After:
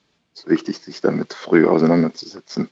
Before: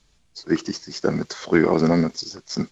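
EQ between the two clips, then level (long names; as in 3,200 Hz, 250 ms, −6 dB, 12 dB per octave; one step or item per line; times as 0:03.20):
band-pass filter 220–4,200 Hz
low-shelf EQ 390 Hz +5.5 dB
+2.0 dB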